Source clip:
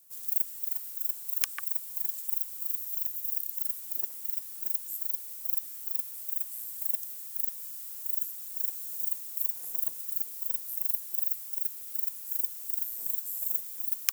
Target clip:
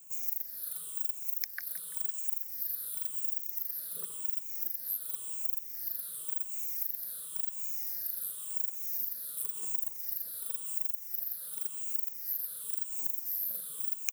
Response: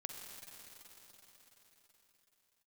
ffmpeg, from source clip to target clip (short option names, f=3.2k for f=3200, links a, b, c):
-filter_complex "[0:a]afftfilt=real='re*pow(10,23/40*sin(2*PI*(0.68*log(max(b,1)*sr/1024/100)/log(2)-(-0.93)*(pts-256)/sr)))':imag='im*pow(10,23/40*sin(2*PI*(0.68*log(max(b,1)*sr/1024/100)/log(2)-(-0.93)*(pts-256)/sr)))':win_size=1024:overlap=0.75,lowshelf=f=130:g=9.5,acrusher=bits=7:mode=log:mix=0:aa=0.000001,acompressor=threshold=-28dB:ratio=6,asplit=2[a][b];[b]aecho=0:1:169|338|507|676|845|1014:0.168|0.0957|0.0545|0.0311|0.0177|0.0101[c];[a][c]amix=inputs=2:normalize=0,volume=-2dB"